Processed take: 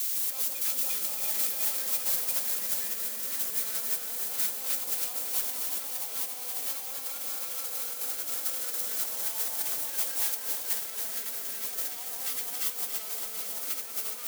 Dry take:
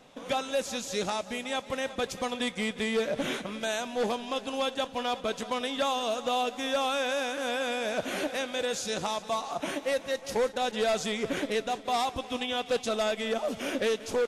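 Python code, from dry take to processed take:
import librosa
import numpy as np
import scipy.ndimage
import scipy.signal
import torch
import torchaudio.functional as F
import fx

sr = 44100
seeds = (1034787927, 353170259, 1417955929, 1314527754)

p1 = scipy.signal.medfilt(x, 15)
p2 = fx.formant_shift(p1, sr, semitones=-2)
p3 = fx.quant_dither(p2, sr, seeds[0], bits=6, dither='triangular')
p4 = p2 + (p3 * librosa.db_to_amplitude(0.0))
p5 = np.sign(p4) * np.maximum(np.abs(p4) - 10.0 ** (-44.0 / 20.0), 0.0)
p6 = p5 + fx.echo_alternate(p5, sr, ms=174, hz=1200.0, feedback_pct=88, wet_db=-3.5, dry=0)
p7 = fx.over_compress(p6, sr, threshold_db=-29.0, ratio=-1.0)
p8 = F.preemphasis(torch.from_numpy(p7), 0.97).numpy()
y = fx.echo_crushed(p8, sr, ms=278, feedback_pct=80, bits=9, wet_db=-8.0)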